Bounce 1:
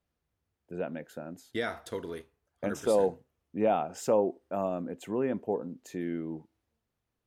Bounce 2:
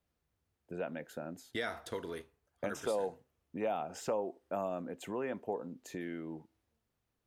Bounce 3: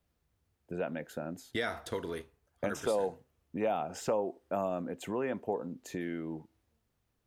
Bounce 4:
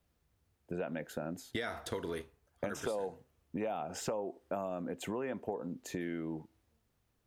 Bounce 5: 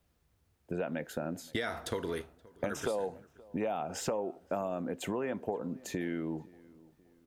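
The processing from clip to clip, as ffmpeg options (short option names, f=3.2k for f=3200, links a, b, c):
-filter_complex "[0:a]acrossover=split=570|4500[a][b][c];[a]acompressor=threshold=-41dB:ratio=4[d];[b]acompressor=threshold=-35dB:ratio=4[e];[c]acompressor=threshold=-50dB:ratio=4[f];[d][e][f]amix=inputs=3:normalize=0"
-af "lowshelf=f=150:g=4.5,volume=3dB"
-af "acompressor=threshold=-35dB:ratio=5,volume=1.5dB"
-filter_complex "[0:a]asplit=2[a][b];[b]adelay=524,lowpass=f=1.7k:p=1,volume=-22.5dB,asplit=2[c][d];[d]adelay=524,lowpass=f=1.7k:p=1,volume=0.43,asplit=2[e][f];[f]adelay=524,lowpass=f=1.7k:p=1,volume=0.43[g];[a][c][e][g]amix=inputs=4:normalize=0,volume=3dB"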